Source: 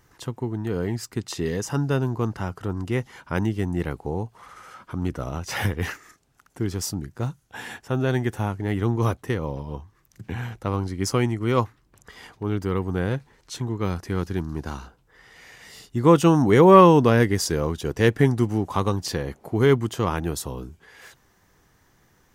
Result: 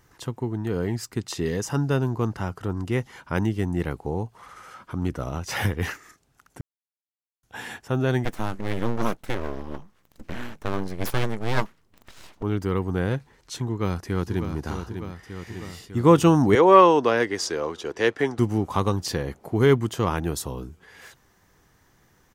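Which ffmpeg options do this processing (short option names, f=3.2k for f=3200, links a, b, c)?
-filter_complex "[0:a]asettb=1/sr,asplit=3[a][b][c];[a]atrim=end=8.254[d];[b]atrim=start=8.25:end=12.43,asetpts=PTS-STARTPTS,afade=t=in:d=0.004:c=qsin,afade=t=out:st=4.176:d=0.004:c=qsin,aeval=exprs='abs(val(0))':c=same[e];[c]atrim=start=12.426[f];[d][e]acrossfade=d=0.004:c1=hsin:c2=qsin[g];[g][f]acrossfade=d=0.004:c1=qsin:c2=hsin,asplit=2[h][i];[i]afade=t=in:st=13.67:d=0.01,afade=t=out:st=14.51:d=0.01,aecho=0:1:600|1200|1800|2400|3000|3600|4200|4800|5400|6000|6600:0.398107|0.278675|0.195073|0.136551|0.0955855|0.0669099|0.0468369|0.0327858|0.0229501|0.0160651|0.0112455[j];[h][j]amix=inputs=2:normalize=0,asettb=1/sr,asplit=3[k][l][m];[k]atrim=end=16.554[n];[l]atrim=start=16.55:end=18.39,asetpts=PTS-STARTPTS,afade=t=in:d=0.004:c=qsin,afade=t=out:st=1.836:d=0.004:c=qsin,acrossover=split=310 7700:gain=0.112 1 0.141[o][p][q];[o][p][q]amix=inputs=3:normalize=0[r];[m]atrim=start=18.386[s];[n][r]acrossfade=d=0.004:c1=hsin:c2=qsin[t];[t][s]acrossfade=d=0.004:c1=qsin:c2=hsin,asplit=3[u][v][w];[u]atrim=end=6.61,asetpts=PTS-STARTPTS,afade=t=out:st=6.606:d=0.004:c=hsin[x];[v]atrim=start=6.61:end=7.43,asetpts=PTS-STARTPTS,volume=0[y];[w]atrim=start=7.43,asetpts=PTS-STARTPTS,afade=t=in:d=0.004:c=hsin[z];[x][y][z]concat=n=3:v=0:a=1"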